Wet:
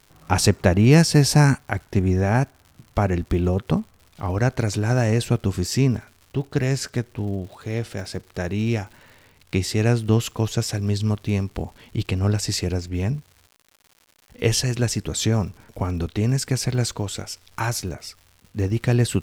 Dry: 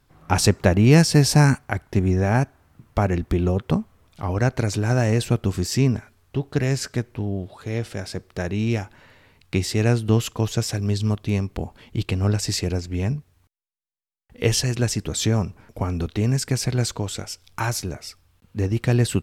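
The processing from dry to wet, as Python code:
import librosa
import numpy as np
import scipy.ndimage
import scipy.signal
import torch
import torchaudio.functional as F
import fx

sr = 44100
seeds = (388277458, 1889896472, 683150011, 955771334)

y = fx.dmg_crackle(x, sr, seeds[0], per_s=180.0, level_db=-39.0)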